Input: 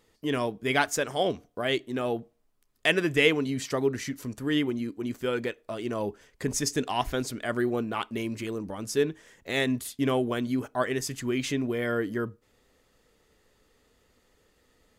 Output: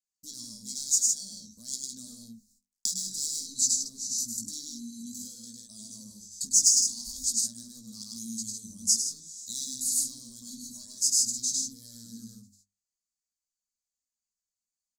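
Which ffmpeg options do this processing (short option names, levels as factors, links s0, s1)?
-filter_complex "[0:a]asoftclip=type=hard:threshold=0.0668,asettb=1/sr,asplit=3[s0][s1][s2];[s0]atrim=end=1.734[s3];[s1]atrim=start=1.73:end=3.88,asetpts=PTS-STARTPTS,afade=t=in:d=0.004:c=qsin,afade=t=out:st=2.146:d=0.004:c=qsin,acontrast=76[s4];[s2]atrim=start=3.876[s5];[s3][s4]acrossfade=d=0.004:c1=hsin:c2=qsin[s6];[s6][s5]acrossfade=d=0.004:c1=qsin:c2=hsin,agate=range=0.0126:threshold=0.00224:ratio=16:detection=peak,bandreject=f=50:t=h:w=6,bandreject=f=100:t=h:w=6,bandreject=f=150:t=h:w=6,bandreject=f=200:t=h:w=6,bandreject=f=250:t=h:w=6,aecho=1:1:1.8:0.43,aecho=1:1:102|154.5:0.794|0.562,flanger=delay=15:depth=6.2:speed=0.51,acompressor=threshold=0.0112:ratio=4,firequalizer=gain_entry='entry(100,0);entry(140,-17);entry(210,13);entry(360,-25);entry(2700,-28);entry(4000,3);entry(7000,9);entry(11000,-5)':delay=0.05:min_phase=1,aexciter=amount=9:drive=5.8:freq=4000,volume=0.596"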